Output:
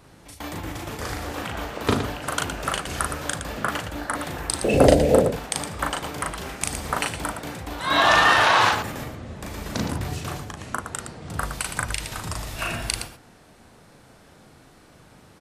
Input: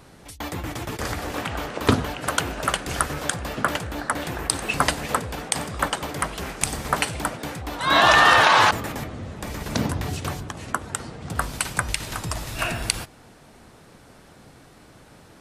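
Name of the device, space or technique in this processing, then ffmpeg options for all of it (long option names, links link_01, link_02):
slapback doubling: -filter_complex "[0:a]asettb=1/sr,asplit=3[link_01][link_02][link_03];[link_01]atrim=end=4.644[link_04];[link_02]atrim=start=4.64:end=5.25,asetpts=PTS-STARTPTS,afade=type=in:duration=0.004:curve=qsin,afade=type=out:start_time=0.606:duration=0.004:curve=qsin,lowshelf=frequency=780:width_type=q:width=3:gain=12.5[link_05];[link_03]atrim=start=5.246[link_06];[link_04][link_05]acrossfade=duration=0.004:curve1=hsin:curve2=qsin[link_07];[link_07][link_06]acrossfade=duration=0.004:curve1=qsin:curve2=hsin,asplit=3[link_08][link_09][link_10];[link_09]adelay=38,volume=-3dB[link_11];[link_10]adelay=115,volume=-8dB[link_12];[link_08][link_11][link_12]amix=inputs=3:normalize=0,volume=-4dB"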